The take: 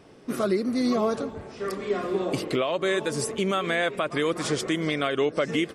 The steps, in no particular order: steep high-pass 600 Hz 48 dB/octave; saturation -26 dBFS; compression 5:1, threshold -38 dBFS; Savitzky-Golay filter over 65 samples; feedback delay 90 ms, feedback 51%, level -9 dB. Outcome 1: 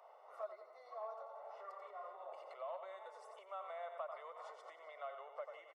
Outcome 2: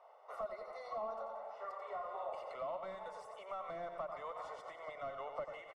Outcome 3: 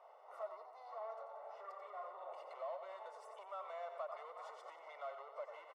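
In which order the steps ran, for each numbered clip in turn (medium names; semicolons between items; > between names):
feedback delay > compression > Savitzky-Golay filter > saturation > steep high-pass; steep high-pass > saturation > feedback delay > compression > Savitzky-Golay filter; saturation > feedback delay > compression > steep high-pass > Savitzky-Golay filter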